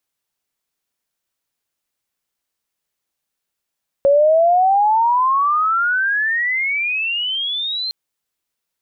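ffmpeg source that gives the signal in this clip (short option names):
-f lavfi -i "aevalsrc='pow(10,(-9-11.5*t/3.86)/20)*sin(2*PI*550*3.86/log(4200/550)*(exp(log(4200/550)*t/3.86)-1))':d=3.86:s=44100"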